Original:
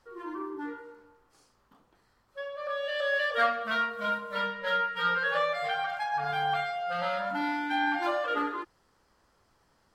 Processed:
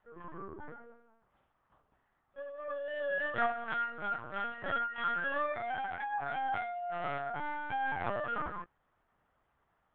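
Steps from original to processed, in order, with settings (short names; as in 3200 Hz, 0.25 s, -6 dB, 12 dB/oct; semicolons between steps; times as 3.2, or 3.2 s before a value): three-band isolator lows -20 dB, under 310 Hz, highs -17 dB, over 3000 Hz; LPC vocoder at 8 kHz pitch kept; gain -5 dB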